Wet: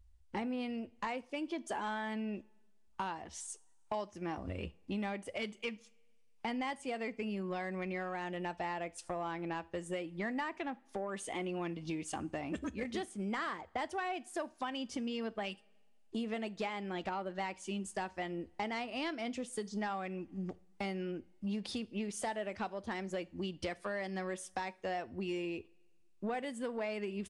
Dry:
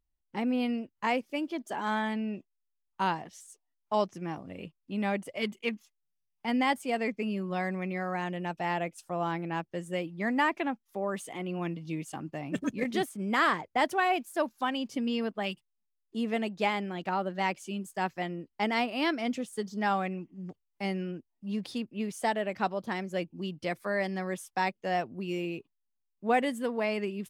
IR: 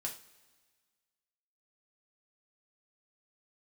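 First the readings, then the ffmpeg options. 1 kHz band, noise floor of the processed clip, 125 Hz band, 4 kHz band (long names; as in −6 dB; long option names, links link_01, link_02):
−9.0 dB, −64 dBFS, −6.5 dB, −7.0 dB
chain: -filter_complex "[0:a]lowshelf=frequency=100:width_type=q:width=3:gain=10.5,acompressor=threshold=-43dB:ratio=6,asoftclip=type=tanh:threshold=-34.5dB,asplit=2[link_01][link_02];[1:a]atrim=start_sample=2205[link_03];[link_02][link_03]afir=irnorm=-1:irlink=0,volume=-11dB[link_04];[link_01][link_04]amix=inputs=2:normalize=0,aresample=22050,aresample=44100,volume=6dB"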